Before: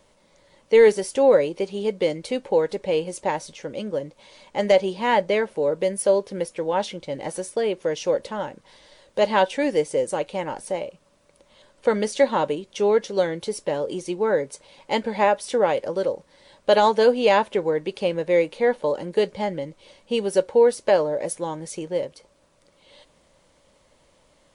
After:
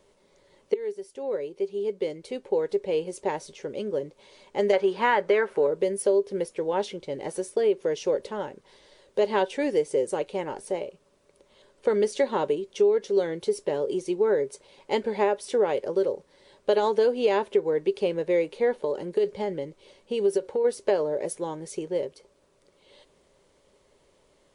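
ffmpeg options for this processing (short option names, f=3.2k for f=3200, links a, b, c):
-filter_complex "[0:a]asettb=1/sr,asplit=3[a][b][c];[a]atrim=end=4.734[d];[b]atrim=start=4.73:end=5.67,asetpts=PTS-STARTPTS,afade=t=in:d=0.004:c=qsin,afade=t=out:st=0.936:d=0.004:c=qsin,equalizer=f=1.4k:t=o:w=1.6:g=14[e];[c]atrim=start=5.666[f];[d][e]acrossfade=d=0.004:c1=hsin:c2=qsin[g];[g][f]acrossfade=d=0.004:c1=qsin:c2=hsin,asplit=3[h][i][j];[h]afade=t=out:st=18.79:d=0.02[k];[i]acompressor=threshold=-21dB:ratio=6:attack=3.2:release=140:knee=1:detection=peak,afade=t=in:st=18.79:d=0.02,afade=t=out:st=20.64:d=0.02[l];[j]afade=t=in:st=20.64:d=0.02[m];[k][l][m]amix=inputs=3:normalize=0,asplit=2[n][o];[n]atrim=end=0.74,asetpts=PTS-STARTPTS,afade=t=out:st=0.736:d=0.004:c=hsin:silence=0.0630957[p];[o]atrim=start=0.74,asetpts=PTS-STARTPTS,afade=t=in:d=2.82:silence=0.0630957[q];[p][q]concat=n=2:v=0:a=1,equalizer=f=400:t=o:w=0.26:g=14.5,acompressor=threshold=-13dB:ratio=6,volume=-5dB"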